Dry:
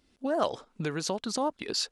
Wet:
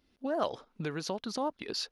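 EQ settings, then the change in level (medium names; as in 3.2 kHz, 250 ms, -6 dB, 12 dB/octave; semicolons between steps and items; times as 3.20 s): peaking EQ 7.9 kHz -13.5 dB 0.42 oct; -3.5 dB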